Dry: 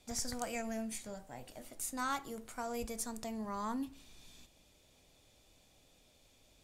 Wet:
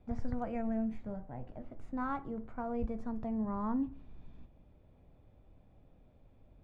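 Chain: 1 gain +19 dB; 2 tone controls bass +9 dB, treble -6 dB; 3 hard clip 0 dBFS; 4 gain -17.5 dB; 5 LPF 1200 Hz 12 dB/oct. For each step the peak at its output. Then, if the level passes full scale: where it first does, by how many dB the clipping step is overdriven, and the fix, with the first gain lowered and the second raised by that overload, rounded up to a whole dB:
-2.0, -4.5, -4.5, -22.0, -22.5 dBFS; no overload

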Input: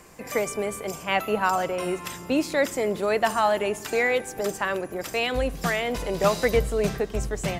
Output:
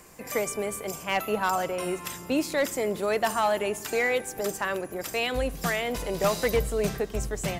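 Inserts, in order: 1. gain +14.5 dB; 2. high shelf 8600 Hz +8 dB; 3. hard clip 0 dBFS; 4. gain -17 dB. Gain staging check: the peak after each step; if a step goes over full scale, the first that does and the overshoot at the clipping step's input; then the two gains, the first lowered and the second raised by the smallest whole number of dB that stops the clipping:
+6.5, +7.0, 0.0, -17.0 dBFS; step 1, 7.0 dB; step 1 +7.5 dB, step 4 -10 dB

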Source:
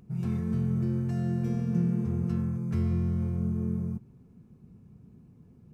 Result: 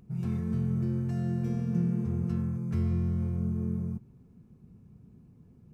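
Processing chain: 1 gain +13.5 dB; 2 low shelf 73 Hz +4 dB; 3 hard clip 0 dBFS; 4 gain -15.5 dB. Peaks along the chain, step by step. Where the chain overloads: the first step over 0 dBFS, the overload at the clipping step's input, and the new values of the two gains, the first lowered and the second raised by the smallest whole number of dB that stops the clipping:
-3.0, -2.0, -2.0, -17.5 dBFS; no overload

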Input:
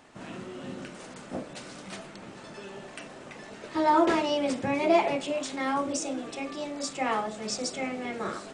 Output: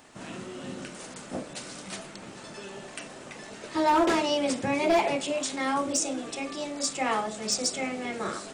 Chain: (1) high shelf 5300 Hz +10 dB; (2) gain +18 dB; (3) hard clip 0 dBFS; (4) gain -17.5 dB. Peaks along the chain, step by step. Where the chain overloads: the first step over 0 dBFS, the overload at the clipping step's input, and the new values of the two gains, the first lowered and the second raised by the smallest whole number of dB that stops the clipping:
-10.5, +7.5, 0.0, -17.5 dBFS; step 2, 7.5 dB; step 2 +10 dB, step 4 -9.5 dB

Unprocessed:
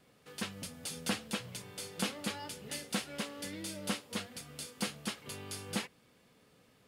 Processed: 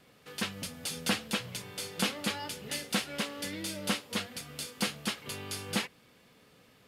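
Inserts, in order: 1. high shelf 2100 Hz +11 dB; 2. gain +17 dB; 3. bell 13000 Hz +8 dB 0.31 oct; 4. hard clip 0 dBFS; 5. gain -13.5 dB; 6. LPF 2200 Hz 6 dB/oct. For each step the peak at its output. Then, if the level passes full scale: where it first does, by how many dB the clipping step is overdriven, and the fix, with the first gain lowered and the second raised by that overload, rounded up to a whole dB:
-14.0, +3.0, +4.0, 0.0, -13.5, -15.5 dBFS; step 2, 4.0 dB; step 2 +13 dB, step 5 -9.5 dB

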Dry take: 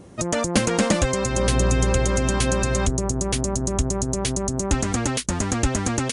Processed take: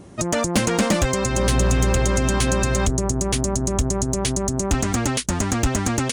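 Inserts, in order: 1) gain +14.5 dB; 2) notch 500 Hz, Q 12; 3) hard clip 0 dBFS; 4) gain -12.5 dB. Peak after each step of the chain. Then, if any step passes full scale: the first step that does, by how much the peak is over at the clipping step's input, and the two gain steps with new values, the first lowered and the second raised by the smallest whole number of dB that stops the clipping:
+8.0, +8.5, 0.0, -12.5 dBFS; step 1, 8.5 dB; step 1 +5.5 dB, step 4 -3.5 dB

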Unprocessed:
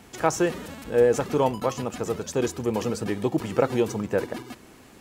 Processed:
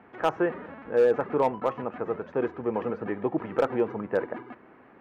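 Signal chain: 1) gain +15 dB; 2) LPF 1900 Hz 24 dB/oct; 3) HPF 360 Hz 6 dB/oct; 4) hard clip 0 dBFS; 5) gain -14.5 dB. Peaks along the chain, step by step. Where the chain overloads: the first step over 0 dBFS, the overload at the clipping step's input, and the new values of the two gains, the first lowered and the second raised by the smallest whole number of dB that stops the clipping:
+9.0, +9.5, +7.0, 0.0, -14.5 dBFS; step 1, 7.0 dB; step 1 +8 dB, step 5 -7.5 dB

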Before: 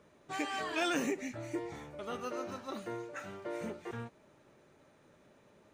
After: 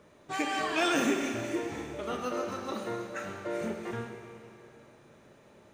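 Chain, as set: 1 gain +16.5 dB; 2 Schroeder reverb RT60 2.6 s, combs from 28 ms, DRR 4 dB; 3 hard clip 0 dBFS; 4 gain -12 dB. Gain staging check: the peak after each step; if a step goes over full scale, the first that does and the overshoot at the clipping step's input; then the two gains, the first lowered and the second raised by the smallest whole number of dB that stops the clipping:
-5.5, -4.0, -4.0, -16.0 dBFS; no overload

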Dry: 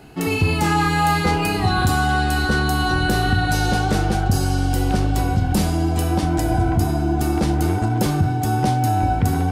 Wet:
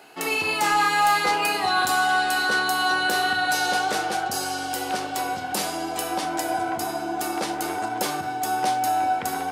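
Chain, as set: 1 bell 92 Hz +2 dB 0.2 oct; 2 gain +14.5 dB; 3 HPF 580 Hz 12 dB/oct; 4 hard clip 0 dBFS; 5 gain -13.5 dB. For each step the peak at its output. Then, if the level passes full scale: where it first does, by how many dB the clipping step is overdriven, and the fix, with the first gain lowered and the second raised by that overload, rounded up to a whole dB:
-7.0, +7.5, +6.0, 0.0, -13.5 dBFS; step 2, 6.0 dB; step 2 +8.5 dB, step 5 -7.5 dB

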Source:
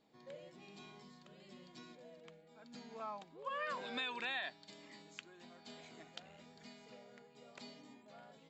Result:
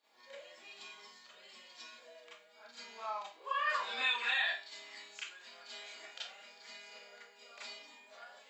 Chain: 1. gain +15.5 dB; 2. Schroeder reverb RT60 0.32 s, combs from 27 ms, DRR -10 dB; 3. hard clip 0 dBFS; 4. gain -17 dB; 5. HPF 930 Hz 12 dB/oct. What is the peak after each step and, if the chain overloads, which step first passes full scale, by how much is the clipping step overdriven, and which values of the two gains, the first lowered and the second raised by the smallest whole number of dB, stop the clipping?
-12.0, -2.5, -2.5, -19.5, -20.0 dBFS; no overload

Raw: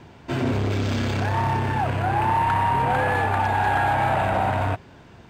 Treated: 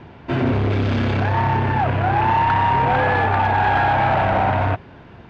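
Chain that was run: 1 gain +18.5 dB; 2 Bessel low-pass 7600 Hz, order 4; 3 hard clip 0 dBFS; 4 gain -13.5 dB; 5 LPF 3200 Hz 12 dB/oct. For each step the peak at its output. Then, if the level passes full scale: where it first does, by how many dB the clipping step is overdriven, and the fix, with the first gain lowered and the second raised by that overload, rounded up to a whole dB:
+3.5, +3.5, 0.0, -13.5, -13.0 dBFS; step 1, 3.5 dB; step 1 +14.5 dB, step 4 -9.5 dB

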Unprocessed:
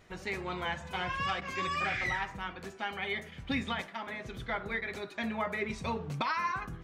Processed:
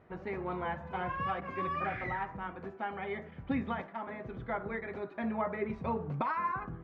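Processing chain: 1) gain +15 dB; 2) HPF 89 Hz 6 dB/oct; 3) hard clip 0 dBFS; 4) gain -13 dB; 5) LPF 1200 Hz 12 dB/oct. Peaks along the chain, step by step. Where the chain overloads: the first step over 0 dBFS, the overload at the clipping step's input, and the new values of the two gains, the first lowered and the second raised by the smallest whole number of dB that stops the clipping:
-3.5, -4.0, -4.0, -17.0, -19.5 dBFS; no overload

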